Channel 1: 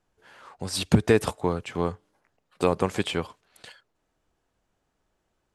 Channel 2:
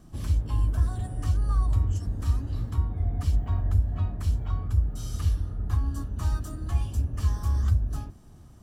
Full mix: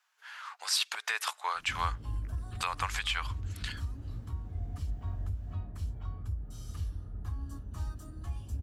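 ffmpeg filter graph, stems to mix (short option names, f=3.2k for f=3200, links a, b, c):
-filter_complex "[0:a]highpass=f=1.1k:w=0.5412,highpass=f=1.1k:w=1.3066,equalizer=f=9k:w=2.3:g=-6,acontrast=54,volume=1dB[a];[1:a]alimiter=limit=-17dB:level=0:latency=1:release=170,adelay=1550,volume=-10dB[b];[a][b]amix=inputs=2:normalize=0,alimiter=limit=-18dB:level=0:latency=1:release=282"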